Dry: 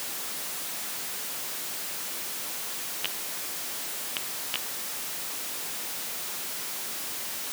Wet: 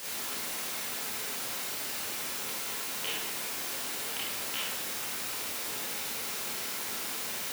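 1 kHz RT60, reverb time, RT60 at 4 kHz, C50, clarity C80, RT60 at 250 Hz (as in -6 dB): 1.2 s, 1.2 s, 0.75 s, -2.5 dB, 1.5 dB, 1.3 s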